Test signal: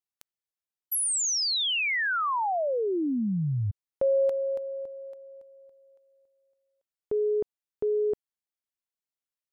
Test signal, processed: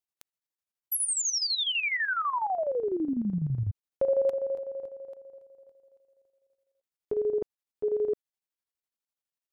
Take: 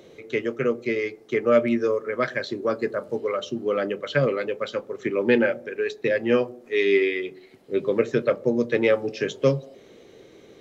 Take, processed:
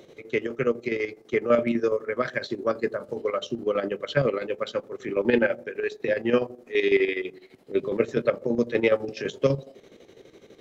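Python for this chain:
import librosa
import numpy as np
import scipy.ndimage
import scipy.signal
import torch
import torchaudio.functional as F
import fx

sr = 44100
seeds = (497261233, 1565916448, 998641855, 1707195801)

y = fx.chopper(x, sr, hz=12.0, depth_pct=60, duty_pct=60)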